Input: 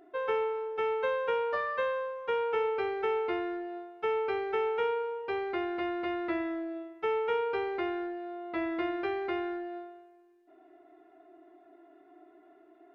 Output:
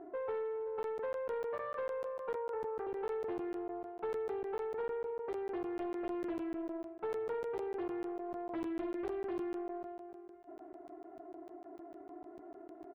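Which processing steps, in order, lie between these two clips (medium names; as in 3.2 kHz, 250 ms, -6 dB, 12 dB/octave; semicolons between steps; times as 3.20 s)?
low-pass 1 kHz 12 dB/octave; compression 2:1, threshold -54 dBFS, peak gain reduction 14.5 dB; saturation -38.5 dBFS, distortion -22 dB; 2.35–2.87 s: Butterworth band-pass 760 Hz, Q 0.63; 8.24–9.43 s: doubling 49 ms -12.5 dB; feedback delay 526 ms, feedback 38%, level -17 dB; crackling interface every 0.15 s, samples 512, zero, from 0.83 s; loudspeaker Doppler distortion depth 0.32 ms; trim +8 dB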